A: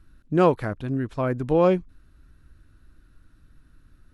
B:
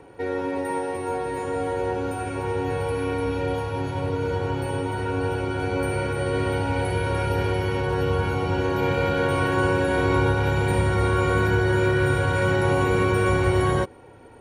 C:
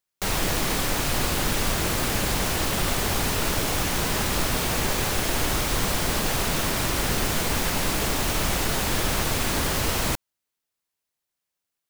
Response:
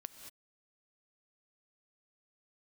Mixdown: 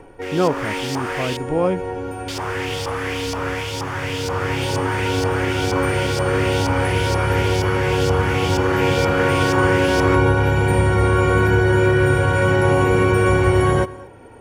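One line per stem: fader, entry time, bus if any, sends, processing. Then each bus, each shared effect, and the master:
-0.5 dB, 0.00 s, no send, none
+2.5 dB, 0.00 s, send -6 dB, auto duck -9 dB, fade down 0.25 s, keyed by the first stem
-1.0 dB, 0.00 s, muted 1.37–2.28 s, no send, level rider gain up to 9.5 dB; LFO band-pass saw up 2.1 Hz 870–4900 Hz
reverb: on, pre-delay 3 ms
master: peaking EQ 4 kHz -10.5 dB 0.21 oct

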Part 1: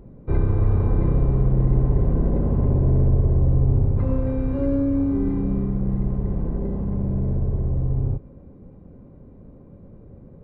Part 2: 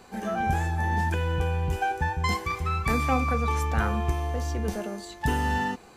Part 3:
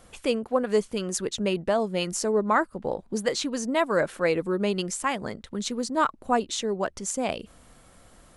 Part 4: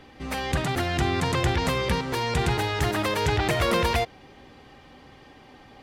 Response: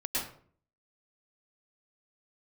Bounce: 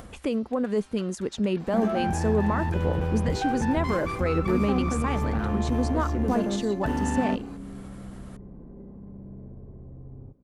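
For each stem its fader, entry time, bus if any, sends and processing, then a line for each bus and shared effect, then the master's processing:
-15.5 dB, 2.15 s, bus A, no send, none
+3.0 dB, 1.60 s, no bus, no send, peak limiter -22.5 dBFS, peak gain reduction 11.5 dB; one-sided clip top -31 dBFS, bottom -24.5 dBFS
+0.5 dB, 0.00 s, bus A, no send, peaking EQ 64 Hz +14 dB 1.8 oct; upward compressor, threshold -31 dBFS
-16.5 dB, 0.00 s, bus A, no send, spectral gate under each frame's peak -15 dB weak
bus A: 0.0 dB, bass shelf 470 Hz -8 dB; peak limiter -19 dBFS, peak gain reduction 8.5 dB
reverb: none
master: peaking EQ 240 Hz +8 dB 1.3 oct; treble shelf 2.6 kHz -9.5 dB

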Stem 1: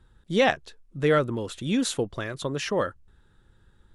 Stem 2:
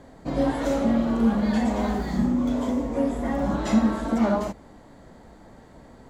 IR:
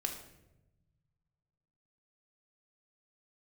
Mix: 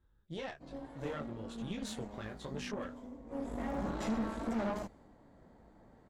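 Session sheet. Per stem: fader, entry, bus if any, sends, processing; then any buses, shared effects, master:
-5.0 dB, 0.00 s, no send, low-pass 8.4 kHz; compression 6:1, threshold -25 dBFS, peak gain reduction 9 dB; detune thickener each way 38 cents
3.21 s -19 dB -> 3.54 s -7 dB, 0.35 s, no send, none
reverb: none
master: valve stage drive 30 dB, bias 0.75; tape noise reduction on one side only decoder only

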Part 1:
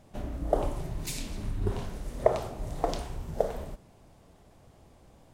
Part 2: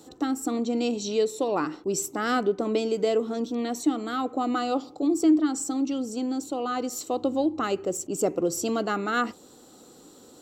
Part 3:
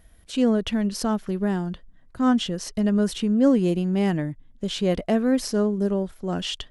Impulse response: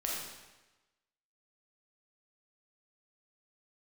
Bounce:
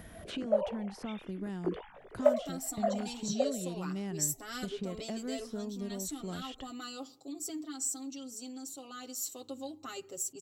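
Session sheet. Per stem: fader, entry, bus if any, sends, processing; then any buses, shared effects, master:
+1.5 dB, 0.00 s, no send, formants replaced by sine waves; chorus 0.5 Hz, delay 18 ms; rotary cabinet horn 0.9 Hz
-3.5 dB, 2.25 s, no send, pre-emphasis filter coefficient 0.9; comb 7.5 ms, depth 81%
-19.5 dB, 0.00 s, no send, three bands compressed up and down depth 100%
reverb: none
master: peaking EQ 72 Hz +8 dB 2.6 oct

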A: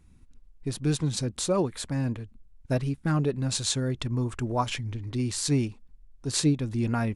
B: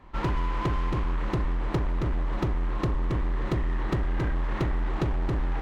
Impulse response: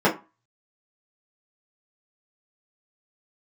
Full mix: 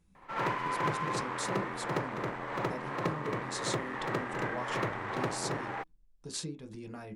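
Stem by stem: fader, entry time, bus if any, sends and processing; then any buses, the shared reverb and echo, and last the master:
-12.0 dB, 0.00 s, send -20 dB, no echo send, treble shelf 8.9 kHz -9.5 dB; compression 6:1, threshold -29 dBFS, peak gain reduction 11 dB
-4.5 dB, 0.15 s, no send, echo send -4.5 dB, high-pass 120 Hz 24 dB/octave; high-order bell 1 kHz +9 dB 2.8 oct; auto duck -9 dB, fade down 0.25 s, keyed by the first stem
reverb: on, RT60 0.30 s, pre-delay 3 ms
echo: delay 71 ms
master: treble shelf 3.4 kHz +9.5 dB

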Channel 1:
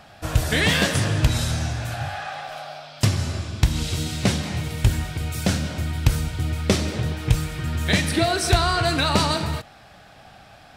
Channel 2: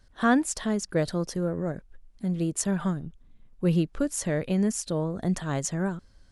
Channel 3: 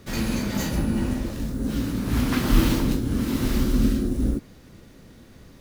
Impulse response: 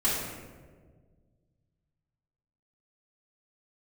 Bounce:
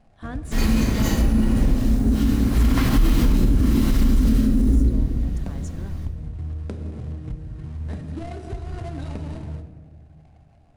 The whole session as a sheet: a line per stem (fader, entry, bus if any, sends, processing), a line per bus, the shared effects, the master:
-10.0 dB, 0.00 s, send -16.5 dB, median filter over 41 samples; steep low-pass 11 kHz 96 dB/octave; compression, threshold -22 dBFS, peak gain reduction 11 dB
-15.5 dB, 0.00 s, send -23.5 dB, none
-0.5 dB, 0.45 s, send -11.5 dB, none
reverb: on, RT60 1.6 s, pre-delay 3 ms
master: bass shelf 72 Hz +9 dB; peak limiter -9.5 dBFS, peak gain reduction 11.5 dB

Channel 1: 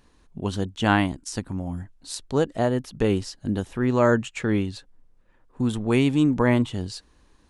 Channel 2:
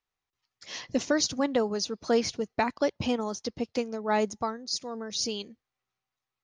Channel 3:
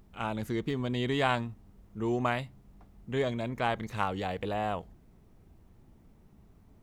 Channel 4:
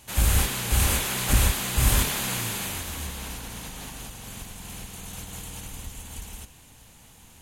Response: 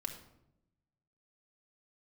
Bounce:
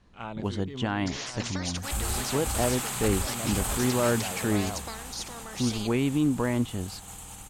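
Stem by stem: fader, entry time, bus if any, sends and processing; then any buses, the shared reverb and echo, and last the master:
-3.5 dB, 0.00 s, bus A, no send, none
-4.0 dB, 0.45 s, bus B, no send, spectrum-flattening compressor 4:1
-6.0 dB, 0.00 s, bus A, no send, compressor with a negative ratio -32 dBFS, ratio -0.5
-7.5 dB, 1.75 s, bus B, no send, graphic EQ with 31 bands 800 Hz +9 dB, 1.25 kHz +7 dB, 8 kHz +10 dB
bus A: 0.0 dB, Bessel low-pass 5.9 kHz; peak limiter -15.5 dBFS, peak gain reduction 8 dB
bus B: 0.0 dB, peak limiter -20 dBFS, peak gain reduction 6.5 dB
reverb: none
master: none

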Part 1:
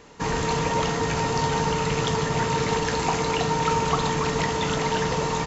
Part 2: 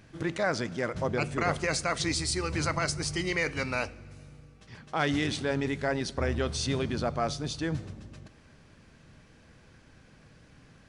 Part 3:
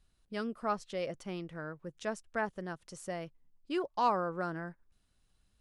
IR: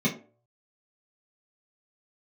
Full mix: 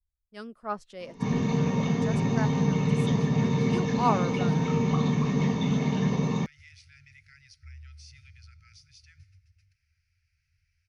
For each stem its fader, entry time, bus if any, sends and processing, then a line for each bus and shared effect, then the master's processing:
-13.0 dB, 1.00 s, bus A, send -5.5 dB, none
-19.0 dB, 1.45 s, bus A, no send, FFT band-reject 150–1300 Hz
-3.5 dB, 0.00 s, no bus, no send, three bands expanded up and down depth 100%
bus A: 0.0 dB, rippled EQ curve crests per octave 0.84, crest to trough 13 dB; compression 2:1, threshold -49 dBFS, peak gain reduction 12 dB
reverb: on, RT60 0.45 s, pre-delay 3 ms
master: peaking EQ 69 Hz +6 dB 0.56 oct

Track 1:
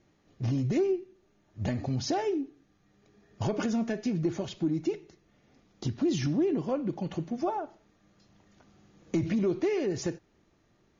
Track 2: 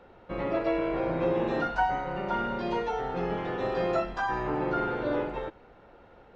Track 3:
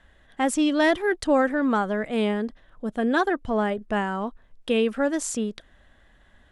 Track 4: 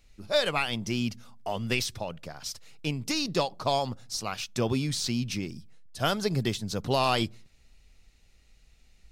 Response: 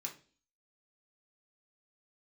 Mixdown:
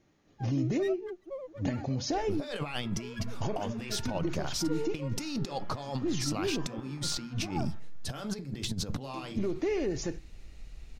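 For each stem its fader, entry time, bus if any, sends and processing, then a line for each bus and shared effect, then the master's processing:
-6.5 dB, 0.00 s, bus A, send -9.5 dB, none
-17.0 dB, 2.30 s, no bus, no send, steep high-pass 1 kHz
-17.0 dB, 0.00 s, no bus, no send, formants replaced by sine waves; loudest bins only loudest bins 2; sliding maximum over 9 samples
+2.0 dB, 2.10 s, bus A, send -18.5 dB, tilt EQ -1.5 dB/octave
bus A: 0.0 dB, compressor with a negative ratio -31 dBFS, ratio -0.5; peak limiter -22.5 dBFS, peak gain reduction 7 dB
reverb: on, RT60 0.40 s, pre-delay 3 ms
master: none

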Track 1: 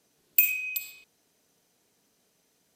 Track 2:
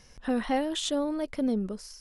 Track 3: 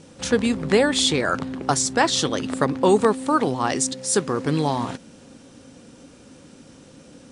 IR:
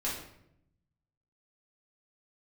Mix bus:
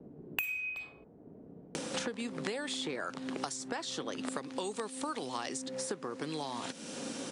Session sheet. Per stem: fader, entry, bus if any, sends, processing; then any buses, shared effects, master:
-3.0 dB, 0.00 s, no send, level-controlled noise filter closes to 320 Hz, open at -23 dBFS; treble shelf 2.7 kHz -11.5 dB
mute
-4.5 dB, 1.75 s, no send, compression 4:1, threshold -30 dBFS, peak gain reduction 15 dB; Bessel high-pass 250 Hz, order 2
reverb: none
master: three bands compressed up and down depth 100%

